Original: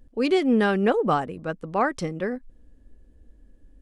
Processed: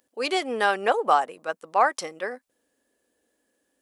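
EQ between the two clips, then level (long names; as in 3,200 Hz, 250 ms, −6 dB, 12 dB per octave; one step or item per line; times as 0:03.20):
high-pass filter 600 Hz 12 dB per octave
high-shelf EQ 5,300 Hz +11.5 dB
dynamic equaliser 800 Hz, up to +6 dB, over −38 dBFS, Q 1.1
0.0 dB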